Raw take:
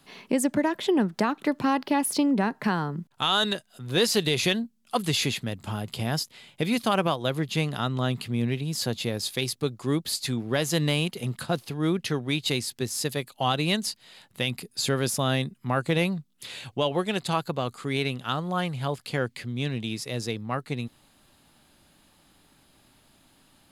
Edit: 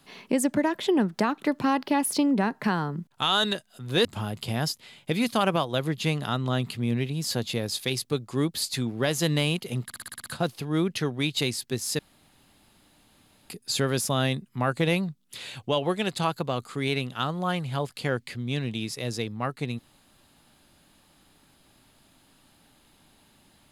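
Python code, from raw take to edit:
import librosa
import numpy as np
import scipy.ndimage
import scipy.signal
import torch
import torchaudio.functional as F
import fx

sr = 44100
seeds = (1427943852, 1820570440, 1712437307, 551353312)

y = fx.edit(x, sr, fx.cut(start_s=4.05, length_s=1.51),
    fx.stutter(start_s=11.35, slice_s=0.06, count=8),
    fx.room_tone_fill(start_s=13.08, length_s=1.51), tone=tone)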